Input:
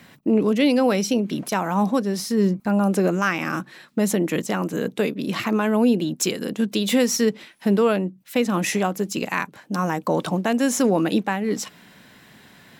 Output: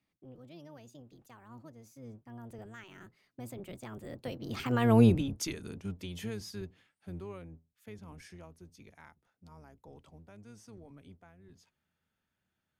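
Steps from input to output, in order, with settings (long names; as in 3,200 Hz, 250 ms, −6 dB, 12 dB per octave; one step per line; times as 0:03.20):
sub-octave generator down 1 octave, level −1 dB
source passing by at 0:04.97, 51 m/s, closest 8.6 metres
level −4.5 dB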